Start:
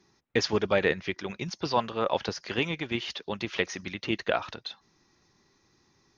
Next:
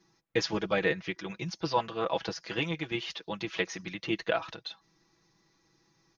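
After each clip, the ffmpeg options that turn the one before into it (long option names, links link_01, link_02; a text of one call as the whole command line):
ffmpeg -i in.wav -af "aecho=1:1:6.1:0.73,volume=-4.5dB" out.wav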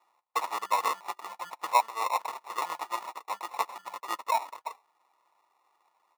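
ffmpeg -i in.wav -af "acrusher=samples=28:mix=1:aa=0.000001,highpass=frequency=950:width_type=q:width=4.4,volume=-2dB" out.wav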